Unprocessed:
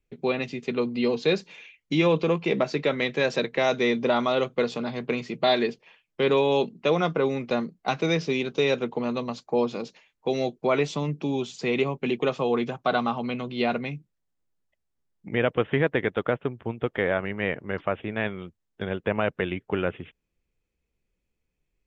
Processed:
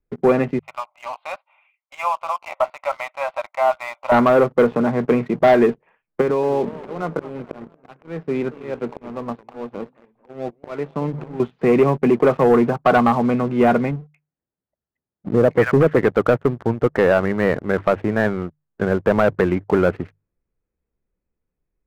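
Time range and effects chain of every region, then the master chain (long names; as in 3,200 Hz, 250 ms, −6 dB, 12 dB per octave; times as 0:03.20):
0:00.59–0:04.12: linear-phase brick-wall high-pass 530 Hz + phaser with its sweep stopped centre 1,700 Hz, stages 6
0:06.21–0:11.40: volume swells 774 ms + downward compressor 8 to 1, threshold −27 dBFS + feedback echo with a swinging delay time 223 ms, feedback 57%, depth 217 cents, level −15.5 dB
0:13.91–0:15.98: high-pass filter 62 Hz + multiband delay without the direct sound lows, highs 230 ms, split 1,200 Hz
whole clip: low-pass filter 1,700 Hz 24 dB per octave; mains-hum notches 50/100/150 Hz; leveller curve on the samples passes 2; level +4.5 dB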